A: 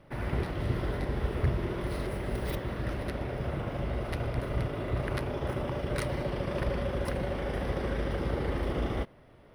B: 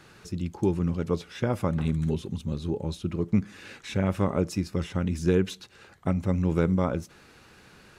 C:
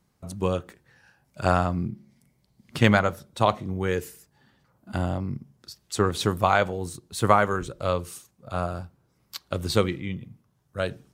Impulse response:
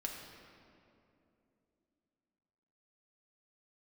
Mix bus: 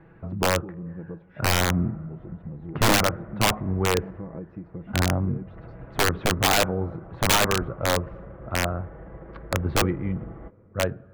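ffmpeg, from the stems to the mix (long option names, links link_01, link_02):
-filter_complex "[0:a]adelay=1450,volume=-11.5dB[link_01];[1:a]equalizer=frequency=1300:width=2.5:gain=-9.5,acontrast=46,volume=-5dB[link_02];[2:a]volume=2dB,asplit=3[link_03][link_04][link_05];[link_04]volume=-20.5dB[link_06];[link_05]apad=whole_len=352022[link_07];[link_02][link_07]sidechaincompress=threshold=-40dB:ratio=5:attack=49:release=288[link_08];[link_01][link_08]amix=inputs=2:normalize=0,aecho=1:1:6.1:0.57,acompressor=threshold=-36dB:ratio=6,volume=0dB[link_09];[3:a]atrim=start_sample=2205[link_10];[link_06][link_10]afir=irnorm=-1:irlink=0[link_11];[link_03][link_09][link_11]amix=inputs=3:normalize=0,lowpass=frequency=1700:width=0.5412,lowpass=frequency=1700:width=1.3066,lowshelf=frequency=130:gain=4,aeval=exprs='(mod(3.98*val(0)+1,2)-1)/3.98':channel_layout=same"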